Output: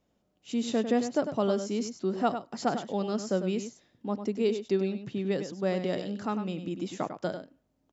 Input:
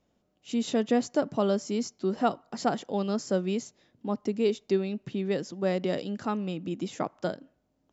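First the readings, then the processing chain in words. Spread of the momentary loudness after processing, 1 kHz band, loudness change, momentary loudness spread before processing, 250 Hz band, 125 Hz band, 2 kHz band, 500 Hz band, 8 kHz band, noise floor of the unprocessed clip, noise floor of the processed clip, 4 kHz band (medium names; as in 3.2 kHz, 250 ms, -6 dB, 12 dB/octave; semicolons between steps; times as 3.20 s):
7 LU, -1.0 dB, -1.0 dB, 8 LU, -1.0 dB, -1.0 dB, -1.0 dB, -1.0 dB, no reading, -74 dBFS, -75 dBFS, -1.0 dB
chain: echo from a far wall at 17 m, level -9 dB; trim -1.5 dB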